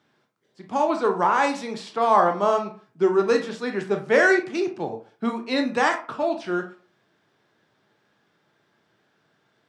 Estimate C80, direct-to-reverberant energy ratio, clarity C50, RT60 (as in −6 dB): 16.5 dB, 4.0 dB, 10.5 dB, 0.40 s